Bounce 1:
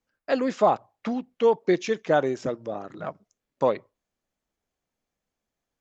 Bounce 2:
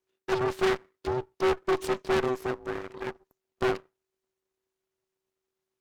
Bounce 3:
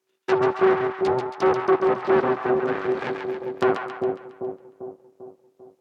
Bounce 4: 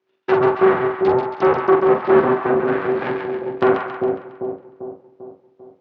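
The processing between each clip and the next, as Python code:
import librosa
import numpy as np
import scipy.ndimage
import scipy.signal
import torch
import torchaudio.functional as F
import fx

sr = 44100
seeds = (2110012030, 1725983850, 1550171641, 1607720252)

y1 = np.abs(x)
y1 = y1 * np.sin(2.0 * np.pi * 380.0 * np.arange(len(y1)) / sr)
y1 = fx.tube_stage(y1, sr, drive_db=24.0, bias=0.6)
y1 = y1 * librosa.db_to_amplitude(5.0)
y2 = fx.env_lowpass_down(y1, sr, base_hz=1400.0, full_db=-25.0)
y2 = scipy.signal.sosfilt(scipy.signal.butter(2, 170.0, 'highpass', fs=sr, output='sos'), y2)
y2 = fx.echo_split(y2, sr, split_hz=760.0, low_ms=395, high_ms=137, feedback_pct=52, wet_db=-4.5)
y2 = y2 * librosa.db_to_amplitude(7.5)
y3 = fx.air_absorb(y2, sr, metres=240.0)
y3 = fx.doubler(y3, sr, ms=44.0, db=-5.5)
y3 = y3 * librosa.db_to_amplitude(5.0)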